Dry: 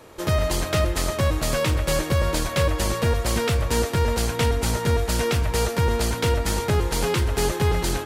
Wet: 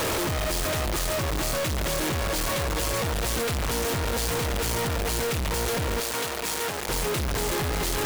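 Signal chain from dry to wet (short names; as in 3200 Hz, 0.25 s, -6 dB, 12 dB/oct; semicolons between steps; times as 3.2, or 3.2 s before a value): infinite clipping; 6–6.89 HPF 430 Hz 6 dB/oct; gain -4.5 dB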